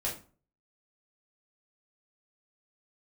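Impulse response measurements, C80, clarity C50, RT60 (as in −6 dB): 14.0 dB, 8.0 dB, 0.40 s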